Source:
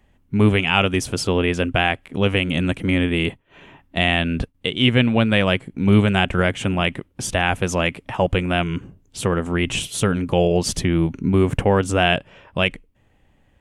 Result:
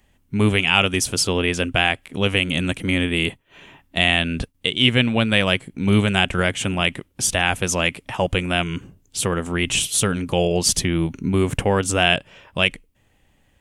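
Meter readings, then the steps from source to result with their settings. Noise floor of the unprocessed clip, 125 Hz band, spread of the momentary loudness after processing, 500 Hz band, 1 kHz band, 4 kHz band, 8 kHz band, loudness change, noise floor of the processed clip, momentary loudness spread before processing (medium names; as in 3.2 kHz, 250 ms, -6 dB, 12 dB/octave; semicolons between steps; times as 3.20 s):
-60 dBFS, -2.5 dB, 6 LU, -2.0 dB, -1.5 dB, +3.5 dB, +7.5 dB, 0.0 dB, -62 dBFS, 8 LU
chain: treble shelf 3 kHz +11.5 dB; trim -2.5 dB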